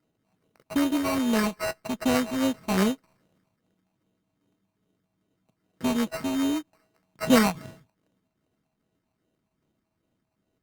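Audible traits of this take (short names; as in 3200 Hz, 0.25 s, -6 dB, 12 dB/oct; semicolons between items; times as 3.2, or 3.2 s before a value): a buzz of ramps at a fixed pitch in blocks of 16 samples; phasing stages 6, 2.5 Hz, lowest notch 440–1600 Hz; aliases and images of a low sample rate 3400 Hz, jitter 0%; Opus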